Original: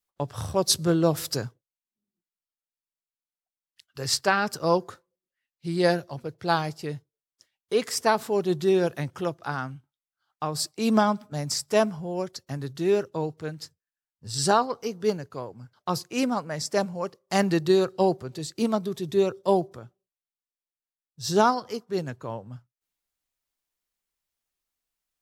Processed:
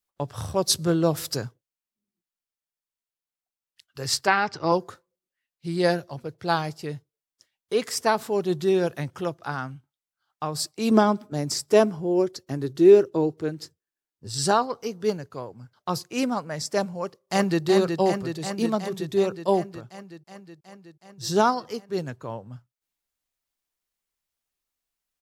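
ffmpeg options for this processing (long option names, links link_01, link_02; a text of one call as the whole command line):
ffmpeg -i in.wav -filter_complex "[0:a]asettb=1/sr,asplit=3[link_01][link_02][link_03];[link_01]atrim=end=4.274[link_04];[link_02]atrim=start=4.27:end=4.72,asetpts=PTS-STARTPTS,afade=type=in:duration=0.004:curve=qsin,afade=type=out:start_time=0.446:duration=0.004:curve=qsin,highpass=100,equalizer=frequency=100:width_type=q:width=4:gain=10,equalizer=frequency=220:width_type=q:width=4:gain=-5,equalizer=frequency=330:width_type=q:width=4:gain=4,equalizer=frequency=530:width_type=q:width=4:gain=-5,equalizer=frequency=870:width_type=q:width=4:gain=6,equalizer=frequency=2100:width_type=q:width=4:gain=8,lowpass=frequency=5400:width=0.5412,lowpass=frequency=5400:width=1.3066[link_05];[link_03]atrim=start=4.716[link_06];[link_04][link_05]acrossfade=duration=0.004:curve1=hsin:curve2=qsin[link_07];[link_07][link_06]acrossfade=duration=0.004:curve1=qsin:curve2=hsin,asettb=1/sr,asplit=3[link_08][link_09][link_10];[link_08]atrim=end=10.914[link_11];[link_09]atrim=start=10.91:end=14.29,asetpts=PTS-STARTPTS,afade=type=in:duration=0.004:curve=qsin,afade=type=out:start_time=3.376:duration=0.004:curve=qsin,equalizer=frequency=350:width_type=o:width=0.77:gain=12[link_12];[link_10]atrim=start=14.286[link_13];[link_11][link_12]acrossfade=duration=0.004:curve1=hsin:curve2=qsin[link_14];[link_14][link_13]acrossfade=duration=0.004:curve1=qsin:curve2=hsin,asplit=2[link_15][link_16];[link_16]afade=type=in:start_time=16.98:duration=0.01,afade=type=out:start_time=17.64:duration=0.01,aecho=0:1:370|740|1110|1480|1850|2220|2590|2960|3330|3700|4070|4440:0.562341|0.421756|0.316317|0.237238|0.177928|0.133446|0.100085|0.0750635|0.0562976|0.0422232|0.0316674|0.0237506[link_17];[link_15][link_17]amix=inputs=2:normalize=0" out.wav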